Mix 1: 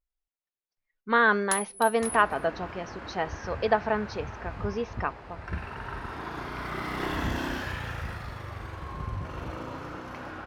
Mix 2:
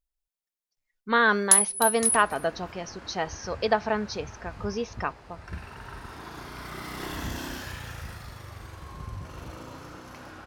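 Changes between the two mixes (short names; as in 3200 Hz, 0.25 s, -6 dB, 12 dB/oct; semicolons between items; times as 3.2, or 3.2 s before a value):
second sound -5.5 dB; master: add tone controls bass +2 dB, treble +13 dB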